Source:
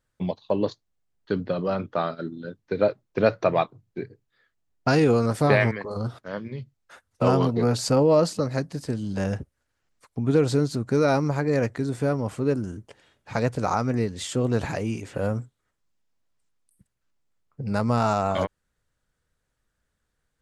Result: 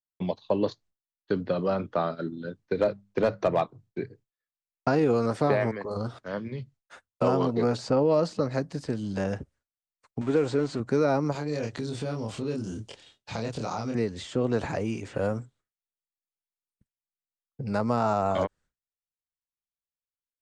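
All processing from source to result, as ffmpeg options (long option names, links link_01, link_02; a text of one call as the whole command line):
ffmpeg -i in.wav -filter_complex "[0:a]asettb=1/sr,asplit=3[link_01][link_02][link_03];[link_01]atrim=end=2.734[link_04];[link_02]atrim=start=2.73:end=3.62,asetpts=PTS-STARTPTS,afade=type=in:duration=0.004:curve=qsin,afade=type=out:start_time=0.886:duration=0.004:curve=qsin,bandreject=frequency=50:width_type=h:width=6,bandreject=frequency=100:width_type=h:width=6,bandreject=frequency=150:width_type=h:width=6,bandreject=frequency=200:width_type=h:width=6,asoftclip=type=hard:threshold=-13dB[link_05];[link_03]atrim=start=3.616[link_06];[link_04][link_05]acrossfade=duration=0.004:curve1=hsin:curve2=qsin[link_07];[link_07][link_06]acrossfade=duration=0.004:curve1=qsin:curve2=hsin,asettb=1/sr,asplit=3[link_08][link_09][link_10];[link_08]atrim=end=10.214[link_11];[link_09]atrim=start=10.21:end=10.8,asetpts=PTS-STARTPTS,afade=type=in:duration=0.004:curve=qsin,afade=type=out:start_time=0.586:duration=0.004:curve=qsin,aeval=exprs='val(0)+0.5*0.02*sgn(val(0))':channel_layout=same,lowpass=frequency=8000:width_type=q:width=3.2,bass=frequency=250:gain=-8,treble=frequency=4000:gain=-12[link_12];[link_10]atrim=start=10.796[link_13];[link_11][link_12]acrossfade=duration=0.004:curve1=hsin:curve2=qsin[link_14];[link_14][link_13]acrossfade=duration=0.004:curve1=qsin:curve2=hsin,asettb=1/sr,asplit=3[link_15][link_16][link_17];[link_15]atrim=end=11.324[link_18];[link_16]atrim=start=11.32:end=13.95,asetpts=PTS-STARTPTS,afade=type=in:duration=0.004:curve=qsin,afade=type=out:start_time=2.626:duration=0.004:curve=qsin,asplit=2[link_19][link_20];[link_20]adelay=27,volume=-3dB[link_21];[link_19][link_21]amix=inputs=2:normalize=0,atrim=end_sample=115983,acompressor=threshold=-30dB:ratio=2.5:attack=3.2:release=140:knee=1:detection=peak,highshelf=frequency=2500:width_type=q:width=1.5:gain=8.5[link_22];[link_17]atrim=start=13.946[link_23];[link_18][link_22]acrossfade=duration=0.004:curve1=hsin:curve2=qsin[link_24];[link_24][link_23]acrossfade=duration=0.004:curve1=qsin:curve2=hsin,agate=range=-33dB:threshold=-48dB:ratio=3:detection=peak,lowpass=frequency=9000:width=0.5412,lowpass=frequency=9000:width=1.3066,acrossover=split=220|1300|4900[link_25][link_26][link_27][link_28];[link_25]acompressor=threshold=-34dB:ratio=4[link_29];[link_26]acompressor=threshold=-20dB:ratio=4[link_30];[link_27]acompressor=threshold=-41dB:ratio=4[link_31];[link_28]acompressor=threshold=-54dB:ratio=4[link_32];[link_29][link_30][link_31][link_32]amix=inputs=4:normalize=0" out.wav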